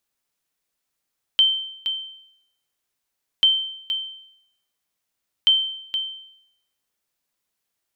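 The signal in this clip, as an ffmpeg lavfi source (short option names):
-f lavfi -i "aevalsrc='0.335*(sin(2*PI*3110*mod(t,2.04))*exp(-6.91*mod(t,2.04)/0.75)+0.355*sin(2*PI*3110*max(mod(t,2.04)-0.47,0))*exp(-6.91*max(mod(t,2.04)-0.47,0)/0.75))':d=6.12:s=44100"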